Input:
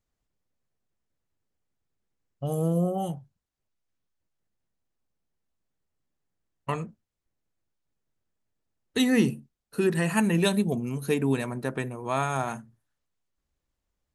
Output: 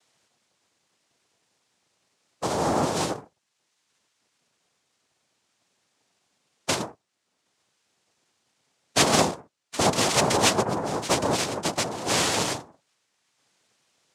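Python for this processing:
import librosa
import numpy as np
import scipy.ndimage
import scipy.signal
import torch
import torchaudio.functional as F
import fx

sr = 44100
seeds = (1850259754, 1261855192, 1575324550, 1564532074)

y = fx.peak_eq(x, sr, hz=3700.0, db=11.5, octaves=2.9)
y = fx.noise_vocoder(y, sr, seeds[0], bands=2)
y = fx.band_squash(y, sr, depth_pct=40)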